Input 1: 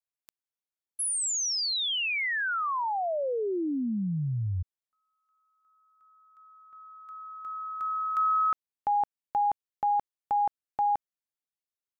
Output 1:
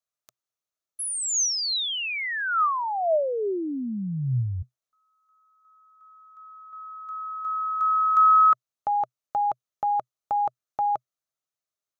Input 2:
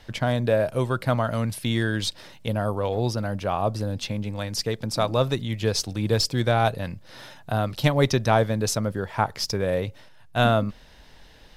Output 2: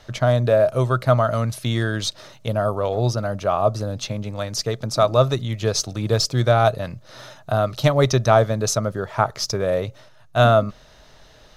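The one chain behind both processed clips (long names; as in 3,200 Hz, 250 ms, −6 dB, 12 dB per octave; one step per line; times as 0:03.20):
thirty-one-band graphic EQ 125 Hz +8 dB, 400 Hz +4 dB, 630 Hz +10 dB, 1,250 Hz +10 dB, 4,000 Hz +4 dB, 6,300 Hz +8 dB
level −1 dB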